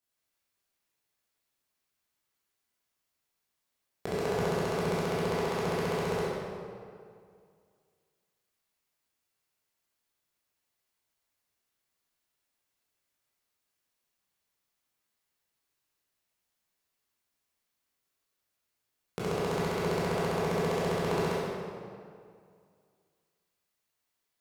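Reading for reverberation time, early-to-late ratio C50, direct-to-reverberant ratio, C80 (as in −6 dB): 2.2 s, −4.0 dB, −9.5 dB, −1.5 dB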